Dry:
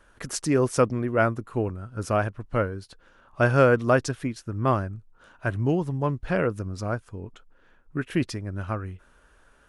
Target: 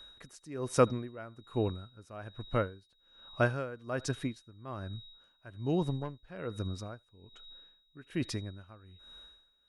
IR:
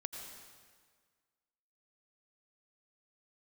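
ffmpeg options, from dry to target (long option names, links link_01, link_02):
-filter_complex "[0:a]asettb=1/sr,asplit=3[link_01][link_02][link_03];[link_01]atrim=end=5.824[link_04];[link_02]atrim=start=5.82:end=6.3,asetpts=PTS-STARTPTS,afade=type=in:duration=0.004:curve=qsin,afade=type=out:start_time=0.476:duration=0.004:curve=qsin,aeval=exprs='0.266*(cos(1*acos(clip(val(0)/0.266,-1,1)))-cos(1*PI/2))+0.0376*(cos(4*acos(clip(val(0)/0.266,-1,1)))-cos(4*PI/2))':channel_layout=same[link_05];[link_03]atrim=start=6.296[link_06];[link_04][link_05]acrossfade=duration=0.004:curve1=hsin:curve2=qsin[link_07];[link_07][link_06]acrossfade=duration=0.004:curve1=qsin:curve2=hsin,aeval=exprs='val(0)+0.00501*sin(2*PI*3800*n/s)':channel_layout=same[link_08];[1:a]atrim=start_sample=2205,atrim=end_sample=3528[link_09];[link_08][link_09]afir=irnorm=-1:irlink=0,aeval=exprs='val(0)*pow(10,-21*(0.5-0.5*cos(2*PI*1.2*n/s))/20)':channel_layout=same"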